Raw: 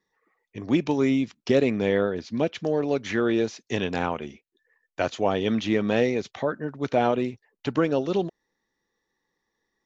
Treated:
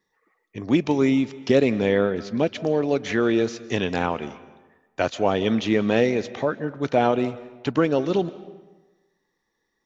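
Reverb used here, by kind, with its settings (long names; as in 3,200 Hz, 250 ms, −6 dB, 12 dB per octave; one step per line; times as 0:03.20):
comb and all-pass reverb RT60 1.2 s, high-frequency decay 0.7×, pre-delay 115 ms, DRR 16.5 dB
level +2.5 dB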